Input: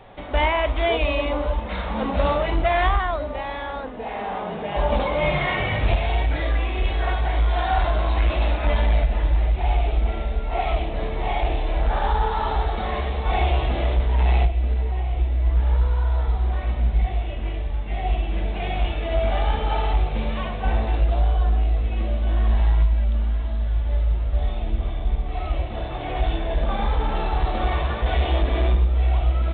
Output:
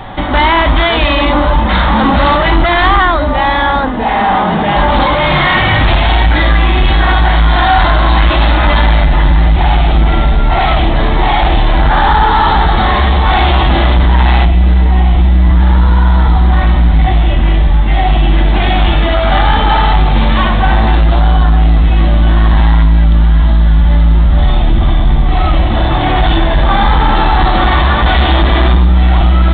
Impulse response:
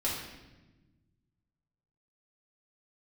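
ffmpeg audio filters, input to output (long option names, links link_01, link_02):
-af "apsyclip=25dB,superequalizer=7b=0.355:8b=0.501:12b=0.562:16b=0.631,volume=-4dB"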